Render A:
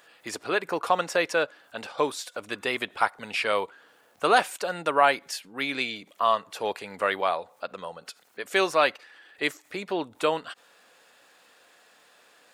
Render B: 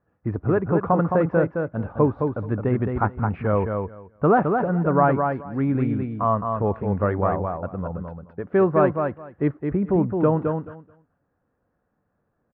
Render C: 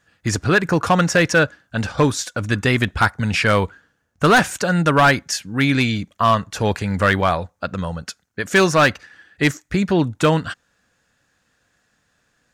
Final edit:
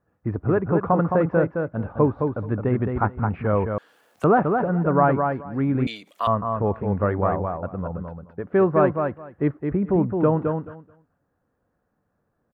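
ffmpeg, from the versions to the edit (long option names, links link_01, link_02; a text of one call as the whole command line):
ffmpeg -i take0.wav -i take1.wav -filter_complex "[0:a]asplit=2[link_01][link_02];[1:a]asplit=3[link_03][link_04][link_05];[link_03]atrim=end=3.782[link_06];[link_01]atrim=start=3.778:end=4.242[link_07];[link_04]atrim=start=4.238:end=5.872[link_08];[link_02]atrim=start=5.868:end=6.272[link_09];[link_05]atrim=start=6.268[link_10];[link_06][link_07]acrossfade=duration=0.004:curve1=hsin:curve2=hsin[link_11];[link_11][link_08]acrossfade=duration=0.004:curve1=hsin:curve2=hsin[link_12];[link_12][link_09]acrossfade=duration=0.004:curve1=hsin:curve2=hsin[link_13];[link_13][link_10]acrossfade=duration=0.004:curve1=hsin:curve2=hsin" out.wav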